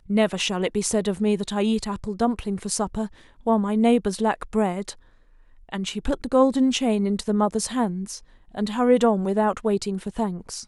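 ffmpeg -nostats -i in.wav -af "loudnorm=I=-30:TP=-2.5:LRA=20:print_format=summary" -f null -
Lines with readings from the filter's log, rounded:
Input Integrated:    -23.6 LUFS
Input True Peak:      -5.7 dBTP
Input LRA:             1.5 LU
Input Threshold:     -34.0 LUFS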